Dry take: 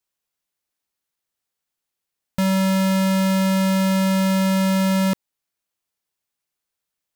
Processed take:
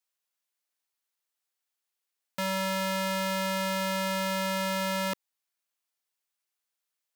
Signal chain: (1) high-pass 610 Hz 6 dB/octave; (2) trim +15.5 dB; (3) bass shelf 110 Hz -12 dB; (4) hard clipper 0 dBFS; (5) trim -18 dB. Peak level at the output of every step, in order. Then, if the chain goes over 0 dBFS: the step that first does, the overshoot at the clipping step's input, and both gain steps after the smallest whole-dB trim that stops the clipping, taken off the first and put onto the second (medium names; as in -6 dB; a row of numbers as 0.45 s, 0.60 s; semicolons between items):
-12.5 dBFS, +3.0 dBFS, +3.0 dBFS, 0.0 dBFS, -18.0 dBFS; step 2, 3.0 dB; step 2 +12.5 dB, step 5 -15 dB